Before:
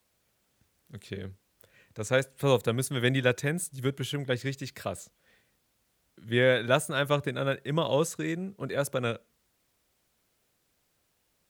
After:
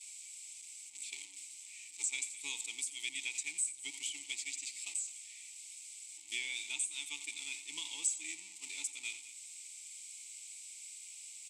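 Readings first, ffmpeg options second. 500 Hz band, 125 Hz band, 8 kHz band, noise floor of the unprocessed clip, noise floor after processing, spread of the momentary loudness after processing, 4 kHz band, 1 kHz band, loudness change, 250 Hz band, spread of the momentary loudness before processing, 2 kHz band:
under -40 dB, under -40 dB, +5.0 dB, -74 dBFS, -52 dBFS, 12 LU, -5.0 dB, -28.5 dB, -11.0 dB, -31.0 dB, 15 LU, -10.0 dB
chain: -filter_complex "[0:a]aeval=exprs='val(0)+0.5*0.0335*sgn(val(0))':c=same,agate=range=-33dB:threshold=-24dB:ratio=3:detection=peak,aderivative,acompressor=threshold=-49dB:ratio=4,asplit=3[a][b][c];[a]bandpass=f=300:t=q:w=8,volume=0dB[d];[b]bandpass=f=870:t=q:w=8,volume=-6dB[e];[c]bandpass=f=2.24k:t=q:w=8,volume=-9dB[f];[d][e][f]amix=inputs=3:normalize=0,aexciter=amount=8.6:drive=5.3:freq=2.1k,lowpass=f=7.9k:t=q:w=9.1,aecho=1:1:87|208:0.2|0.133,volume=12.5dB"

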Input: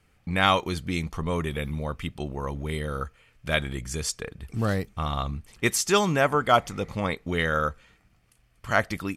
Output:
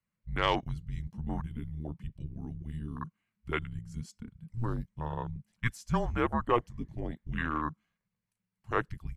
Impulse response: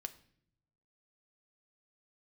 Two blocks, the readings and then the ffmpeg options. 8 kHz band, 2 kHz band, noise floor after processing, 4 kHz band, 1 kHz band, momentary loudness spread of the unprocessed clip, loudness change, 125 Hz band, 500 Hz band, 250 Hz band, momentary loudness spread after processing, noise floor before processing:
-23.5 dB, -10.5 dB, under -85 dBFS, -12.0 dB, -8.0 dB, 12 LU, -8.5 dB, -5.5 dB, -9.5 dB, -6.5 dB, 13 LU, -64 dBFS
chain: -af "afreqshift=-230,afwtdn=0.0398,volume=-7dB"

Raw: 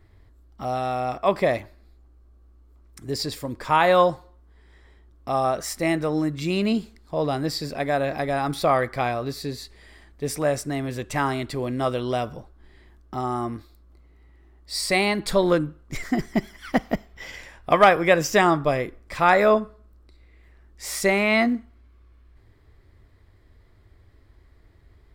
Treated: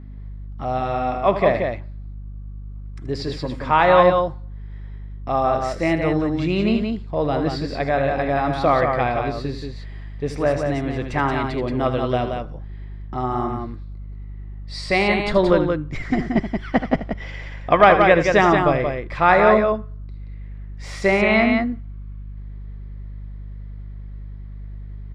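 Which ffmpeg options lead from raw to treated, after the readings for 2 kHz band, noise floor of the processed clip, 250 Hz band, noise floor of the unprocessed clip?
+3.5 dB, -34 dBFS, +4.0 dB, -55 dBFS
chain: -af "lowpass=3.3k,aeval=exprs='val(0)+0.0112*(sin(2*PI*50*n/s)+sin(2*PI*2*50*n/s)/2+sin(2*PI*3*50*n/s)/3+sin(2*PI*4*50*n/s)/4+sin(2*PI*5*50*n/s)/5)':c=same,aecho=1:1:78.72|177.8:0.282|0.562,volume=2.5dB"

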